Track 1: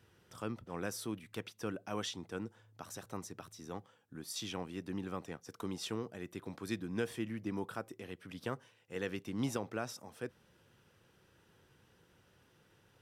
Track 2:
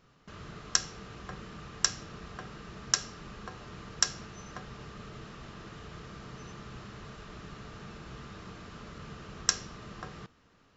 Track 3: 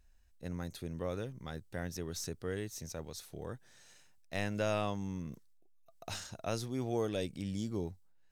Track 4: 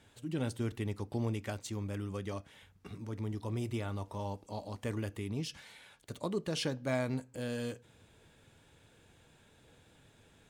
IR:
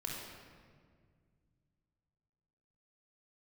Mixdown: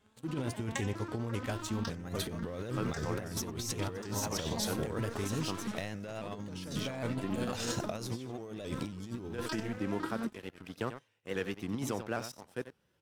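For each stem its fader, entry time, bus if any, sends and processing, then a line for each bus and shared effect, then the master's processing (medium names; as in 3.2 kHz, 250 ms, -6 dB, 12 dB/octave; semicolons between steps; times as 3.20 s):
-7.5 dB, 2.35 s, no send, echo send -10.5 dB, none
-6.0 dB, 0.00 s, no send, echo send -22.5 dB, vocoder on a broken chord minor triad, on A3, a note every 187 ms; stepped phaser 2.1 Hz 580–2500 Hz
+0.5 dB, 1.45 s, no send, echo send -19.5 dB, de-esser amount 80%; peak limiter -29.5 dBFS, peak gain reduction 8 dB
-9.0 dB, 0.00 s, send -17.5 dB, no echo send, none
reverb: on, RT60 1.9 s, pre-delay 24 ms
echo: delay 91 ms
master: waveshaping leveller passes 2; compressor with a negative ratio -35 dBFS, ratio -0.5; vibrato with a chosen wave saw up 3.7 Hz, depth 100 cents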